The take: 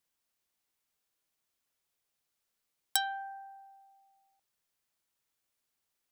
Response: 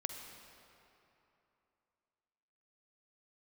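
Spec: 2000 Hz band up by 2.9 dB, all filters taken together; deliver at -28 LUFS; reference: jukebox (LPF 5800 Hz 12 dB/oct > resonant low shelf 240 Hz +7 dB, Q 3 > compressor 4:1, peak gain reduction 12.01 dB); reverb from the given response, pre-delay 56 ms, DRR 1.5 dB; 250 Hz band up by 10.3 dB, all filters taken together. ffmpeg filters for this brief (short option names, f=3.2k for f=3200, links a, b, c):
-filter_complex "[0:a]equalizer=f=250:t=o:g=6,equalizer=f=2k:t=o:g=4.5,asplit=2[a][b];[1:a]atrim=start_sample=2205,adelay=56[c];[b][c]afir=irnorm=-1:irlink=0,volume=-1.5dB[d];[a][d]amix=inputs=2:normalize=0,lowpass=5.8k,lowshelf=f=240:t=q:w=3:g=7,acompressor=threshold=-40dB:ratio=4,volume=17dB"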